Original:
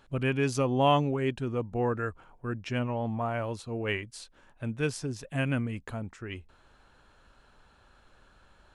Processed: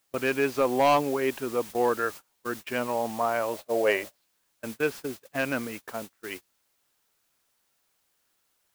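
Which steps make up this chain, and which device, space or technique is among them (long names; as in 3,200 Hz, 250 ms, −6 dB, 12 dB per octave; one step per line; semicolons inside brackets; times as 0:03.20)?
aircraft radio (band-pass filter 380–2,500 Hz; hard clipping −22 dBFS, distortion −12 dB; white noise bed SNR 15 dB; noise gate −43 dBFS, range −28 dB)
0:03.53–0:04.16: parametric band 600 Hz +15 dB 0.51 octaves
level +6.5 dB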